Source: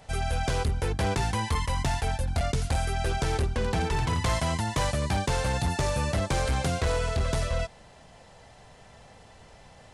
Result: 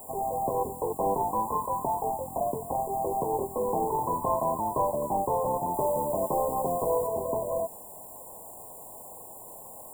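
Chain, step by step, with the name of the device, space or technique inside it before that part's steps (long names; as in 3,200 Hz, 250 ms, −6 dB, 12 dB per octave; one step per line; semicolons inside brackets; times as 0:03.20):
army field radio (band-pass filter 380–3,000 Hz; variable-slope delta modulation 16 kbit/s; white noise bed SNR 16 dB)
0:05.74–0:07.07: high-shelf EQ 6,400 Hz +5.5 dB
brick-wall band-stop 1,100–7,000 Hz
level +6 dB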